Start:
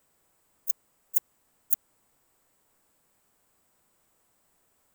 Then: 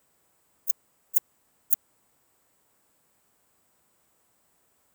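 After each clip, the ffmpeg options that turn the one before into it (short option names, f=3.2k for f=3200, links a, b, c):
-af "highpass=48,volume=1.5dB"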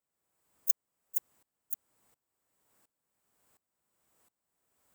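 -af "aeval=exprs='val(0)*pow(10,-23*if(lt(mod(-1.4*n/s,1),2*abs(-1.4)/1000),1-mod(-1.4*n/s,1)/(2*abs(-1.4)/1000),(mod(-1.4*n/s,1)-2*abs(-1.4)/1000)/(1-2*abs(-1.4)/1000))/20)':c=same"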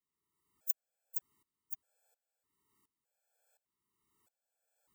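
-af "afftfilt=real='re*gt(sin(2*PI*0.82*pts/sr)*(1-2*mod(floor(b*sr/1024/450),2)),0)':imag='im*gt(sin(2*PI*0.82*pts/sr)*(1-2*mod(floor(b*sr/1024/450),2)),0)':win_size=1024:overlap=0.75,volume=-2.5dB"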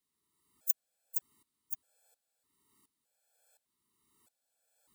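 -af "equalizer=f=250:t=o:w=0.67:g=5,equalizer=f=4k:t=o:w=0.67:g=6,equalizer=f=10k:t=o:w=0.67:g=7,volume=3dB"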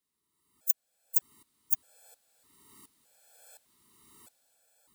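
-af "dynaudnorm=f=260:g=7:m=15.5dB"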